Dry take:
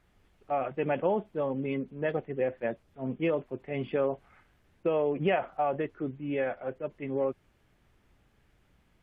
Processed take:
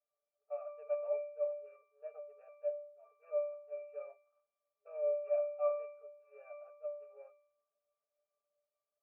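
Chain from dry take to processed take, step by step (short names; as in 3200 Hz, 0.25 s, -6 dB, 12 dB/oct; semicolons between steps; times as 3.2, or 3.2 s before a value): median filter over 25 samples; octave resonator D, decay 0.64 s; FFT band-pass 410–2800 Hz; mismatched tape noise reduction decoder only; gain +10 dB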